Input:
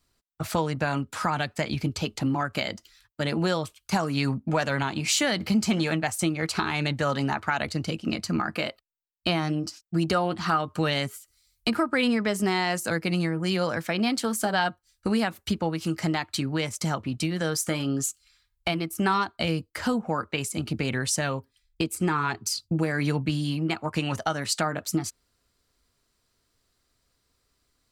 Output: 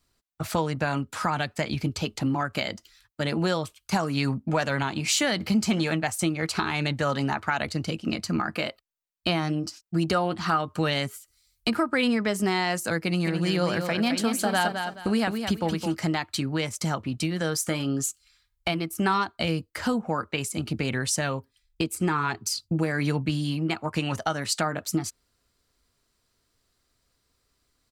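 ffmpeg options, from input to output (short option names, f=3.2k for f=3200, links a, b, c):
-filter_complex "[0:a]asplit=3[a][b][c];[a]afade=t=out:st=13.24:d=0.02[d];[b]aecho=1:1:214|428|642|856:0.473|0.132|0.0371|0.0104,afade=t=in:st=13.24:d=0.02,afade=t=out:st=15.93:d=0.02[e];[c]afade=t=in:st=15.93:d=0.02[f];[d][e][f]amix=inputs=3:normalize=0"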